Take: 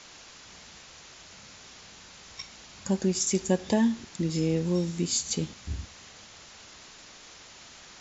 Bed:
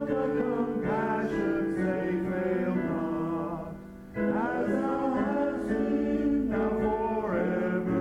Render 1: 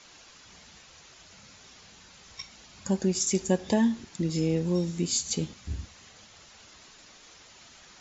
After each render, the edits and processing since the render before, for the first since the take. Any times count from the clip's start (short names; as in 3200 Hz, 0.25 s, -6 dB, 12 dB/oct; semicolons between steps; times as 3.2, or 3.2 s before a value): denoiser 6 dB, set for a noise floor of -50 dBFS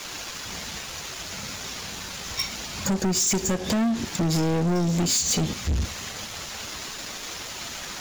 compressor 12:1, threshold -29 dBFS, peak gain reduction 12 dB; sample leveller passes 5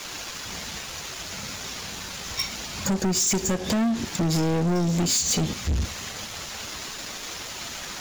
nothing audible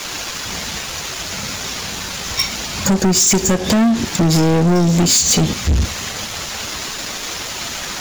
gain +9.5 dB